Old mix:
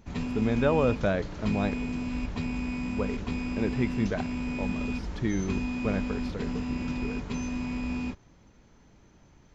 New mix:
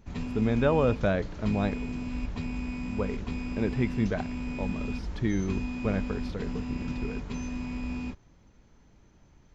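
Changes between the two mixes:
background -3.5 dB; master: add bass shelf 80 Hz +6 dB

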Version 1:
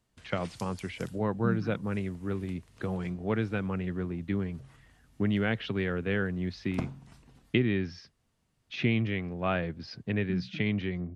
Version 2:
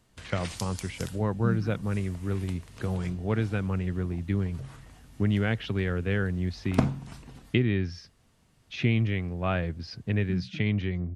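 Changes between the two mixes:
speech: remove band-pass 140–5300 Hz; background +10.5 dB

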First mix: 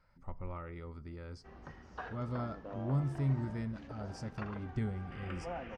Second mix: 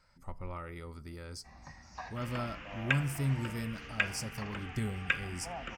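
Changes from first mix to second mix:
first sound: add static phaser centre 2.1 kHz, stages 8; second sound: entry -2.95 s; master: remove tape spacing loss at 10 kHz 25 dB

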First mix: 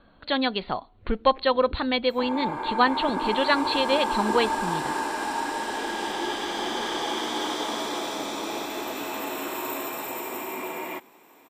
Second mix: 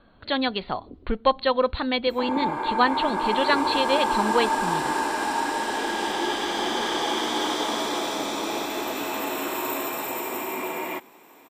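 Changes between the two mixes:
first sound: entry -0.80 s; second sound +3.0 dB

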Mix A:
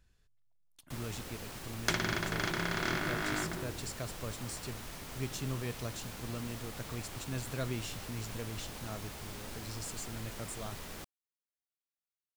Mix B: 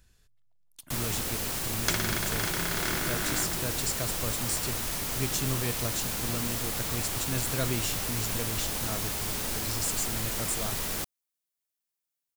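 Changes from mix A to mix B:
speech +5.5 dB; first sound +9.5 dB; master: add treble shelf 5.5 kHz +9.5 dB

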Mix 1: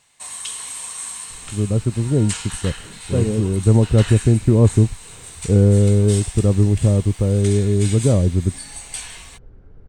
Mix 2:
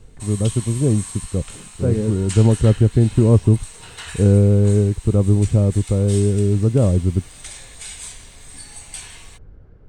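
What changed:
speech: entry -1.30 s; background -3.5 dB

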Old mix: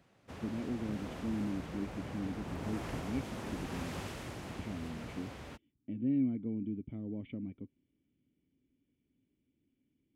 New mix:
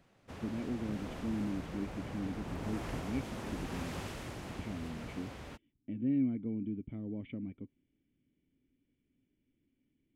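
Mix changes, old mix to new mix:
speech: add peaking EQ 1.7 kHz +4.5 dB 0.99 oct; master: remove high-pass 47 Hz

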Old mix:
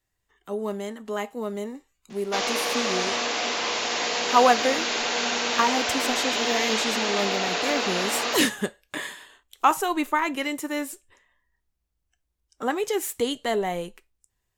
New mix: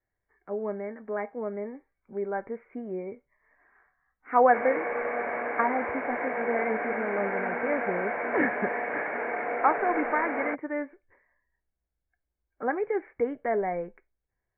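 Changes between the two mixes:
background: entry +2.20 s; master: add rippled Chebyshev low-pass 2.3 kHz, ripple 6 dB

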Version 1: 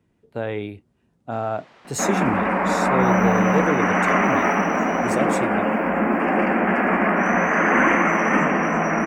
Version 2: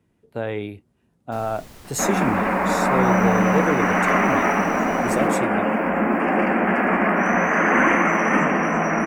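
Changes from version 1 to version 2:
first sound: remove band-pass 580–2800 Hz; master: add peaking EQ 12 kHz +7.5 dB 0.59 oct

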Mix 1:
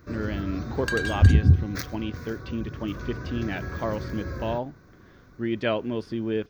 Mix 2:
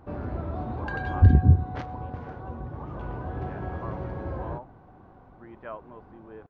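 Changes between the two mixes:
speech: add band-pass filter 1.1 kHz, Q 2.7; first sound: remove static phaser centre 3 kHz, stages 6; master: add tape spacing loss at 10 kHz 43 dB

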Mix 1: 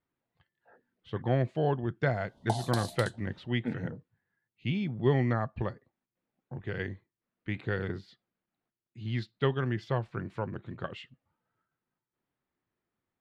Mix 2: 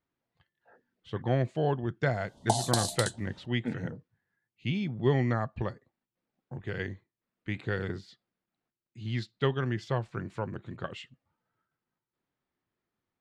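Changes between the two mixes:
background +4.5 dB; master: add peaking EQ 7.6 kHz +10 dB 1.1 oct

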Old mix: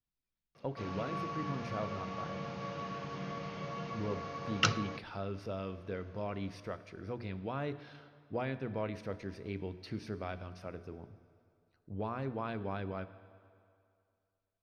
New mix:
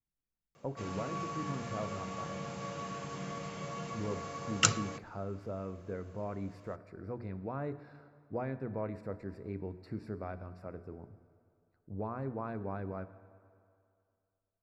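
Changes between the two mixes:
speech: add boxcar filter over 14 samples; master: remove Savitzky-Golay filter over 15 samples

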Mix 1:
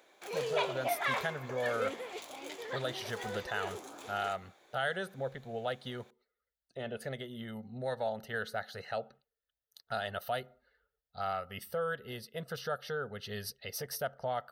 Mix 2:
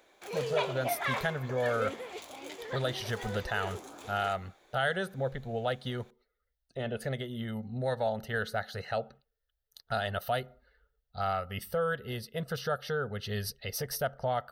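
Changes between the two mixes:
speech +3.5 dB; master: remove high-pass 190 Hz 6 dB/octave

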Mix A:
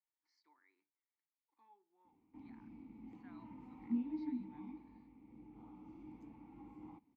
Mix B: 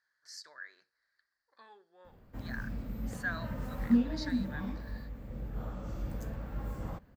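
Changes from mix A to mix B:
speech: remove distance through air 130 m; master: remove vowel filter u

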